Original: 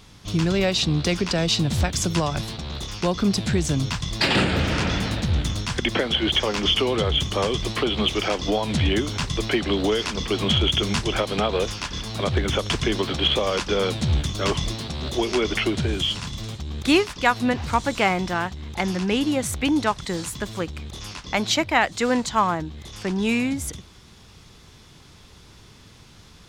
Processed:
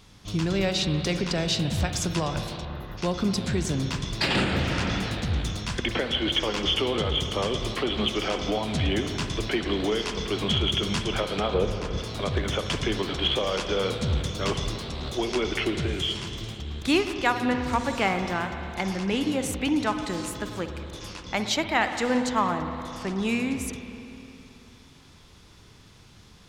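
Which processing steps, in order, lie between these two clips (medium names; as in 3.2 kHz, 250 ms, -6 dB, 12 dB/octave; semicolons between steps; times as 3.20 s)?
2.65–2.98 s: time-frequency box 2.1–11 kHz -26 dB; 11.54–11.98 s: tilt shelf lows +7.5 dB, about 840 Hz; spring tank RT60 3 s, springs 52/56 ms, chirp 45 ms, DRR 6.5 dB; trim -4.5 dB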